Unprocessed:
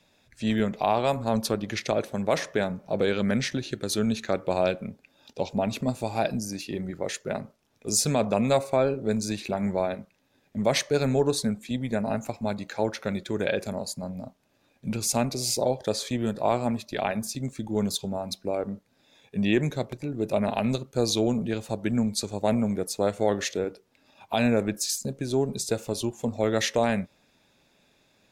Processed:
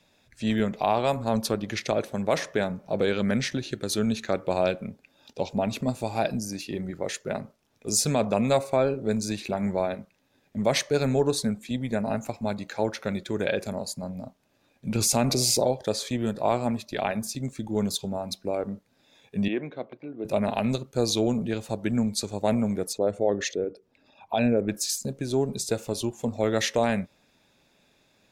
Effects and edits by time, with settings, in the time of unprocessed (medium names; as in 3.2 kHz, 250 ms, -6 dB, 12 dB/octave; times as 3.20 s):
14.95–15.71 s: level flattener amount 70%
19.48–20.25 s: cabinet simulation 330–2700 Hz, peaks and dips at 400 Hz -5 dB, 590 Hz -3 dB, 880 Hz -6 dB, 1.3 kHz -4 dB, 1.8 kHz -8 dB, 2.6 kHz -5 dB
22.93–24.69 s: resonances exaggerated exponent 1.5